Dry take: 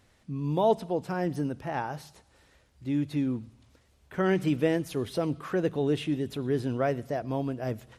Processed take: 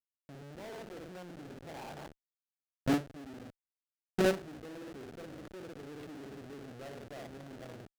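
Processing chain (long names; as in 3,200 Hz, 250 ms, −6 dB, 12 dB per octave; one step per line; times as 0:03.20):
flutter between parallel walls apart 9.7 metres, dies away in 0.57 s
reversed playback
downward compressor 4 to 1, threshold −35 dBFS, peak gain reduction 15 dB
reversed playback
comparator with hysteresis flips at −39.5 dBFS
mid-hump overdrive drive 36 dB, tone 6,200 Hz, clips at −31.5 dBFS
noise gate with hold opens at −32 dBFS
level +12 dB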